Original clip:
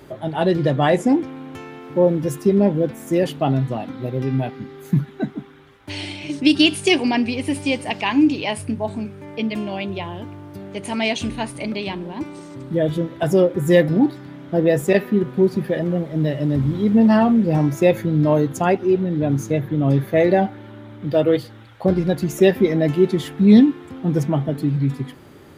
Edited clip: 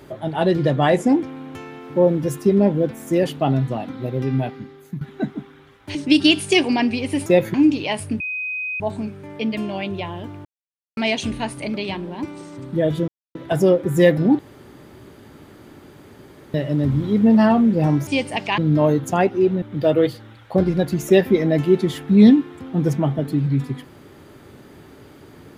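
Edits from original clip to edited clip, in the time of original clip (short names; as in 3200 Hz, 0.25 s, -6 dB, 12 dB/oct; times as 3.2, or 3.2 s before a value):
4.47–5.01 fade out, to -17 dB
5.95–6.3 cut
7.61–8.12 swap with 17.78–18.06
8.78 add tone 2510 Hz -23.5 dBFS 0.60 s
10.43–10.95 mute
13.06 insert silence 0.27 s
14.1–16.25 room tone
19.1–20.92 cut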